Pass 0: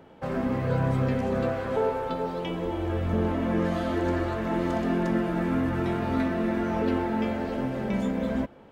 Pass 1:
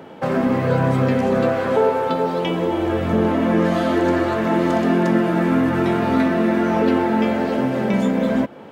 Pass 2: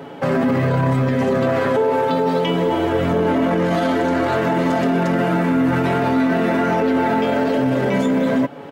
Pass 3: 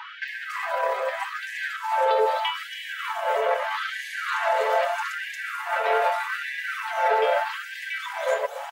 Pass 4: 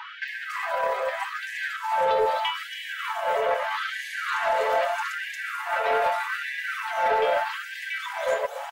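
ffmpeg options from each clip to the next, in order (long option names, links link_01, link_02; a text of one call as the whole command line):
ffmpeg -i in.wav -filter_complex "[0:a]highpass=140,asplit=2[link_01][link_02];[link_02]acompressor=threshold=-34dB:ratio=6,volume=-1dB[link_03];[link_01][link_03]amix=inputs=2:normalize=0,volume=7dB" out.wav
ffmpeg -i in.wav -af "aecho=1:1:7.1:0.67,alimiter=limit=-13.5dB:level=0:latency=1:release=15,volume=3dB" out.wav
ffmpeg -i in.wav -filter_complex "[0:a]acompressor=threshold=-22dB:ratio=6,acrossover=split=4900[link_01][link_02];[link_02]adelay=280[link_03];[link_01][link_03]amix=inputs=2:normalize=0,afftfilt=real='re*gte(b*sr/1024,410*pow(1600/410,0.5+0.5*sin(2*PI*0.8*pts/sr)))':imag='im*gte(b*sr/1024,410*pow(1600/410,0.5+0.5*sin(2*PI*0.8*pts/sr)))':win_size=1024:overlap=0.75,volume=6.5dB" out.wav
ffmpeg -i in.wav -af "asoftclip=type=tanh:threshold=-13.5dB" out.wav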